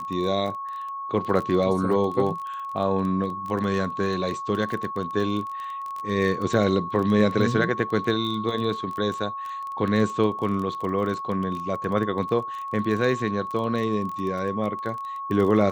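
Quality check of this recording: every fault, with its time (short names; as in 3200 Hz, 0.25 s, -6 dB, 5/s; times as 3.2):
crackle 20/s -29 dBFS
tone 1100 Hz -30 dBFS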